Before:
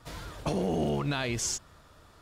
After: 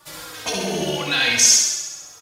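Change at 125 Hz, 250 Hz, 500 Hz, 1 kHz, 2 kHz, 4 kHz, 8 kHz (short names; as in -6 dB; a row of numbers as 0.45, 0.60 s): -1.0, +2.0, +5.0, +6.5, +16.5, +19.0, +20.0 dB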